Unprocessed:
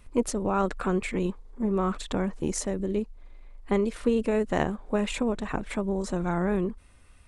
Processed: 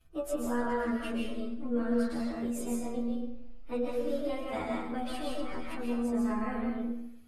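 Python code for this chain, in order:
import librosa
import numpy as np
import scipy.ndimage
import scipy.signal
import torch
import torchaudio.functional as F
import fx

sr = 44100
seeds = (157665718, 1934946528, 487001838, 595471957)

y = fx.pitch_bins(x, sr, semitones=3.5)
y = fx.stiff_resonator(y, sr, f0_hz=78.0, decay_s=0.26, stiffness=0.002)
y = fx.rev_freeverb(y, sr, rt60_s=0.78, hf_ratio=0.9, predelay_ms=95, drr_db=-2.0)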